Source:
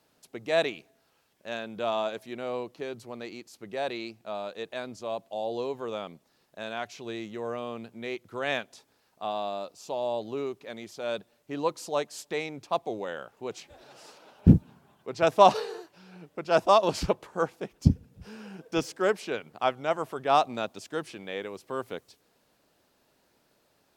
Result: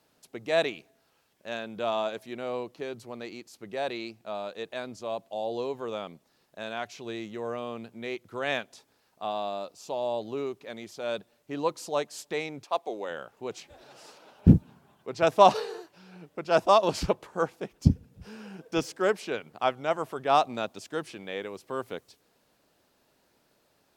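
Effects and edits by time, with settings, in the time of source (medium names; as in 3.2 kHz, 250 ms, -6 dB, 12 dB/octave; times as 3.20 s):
12.63–13.09 s: high-pass 530 Hz -> 240 Hz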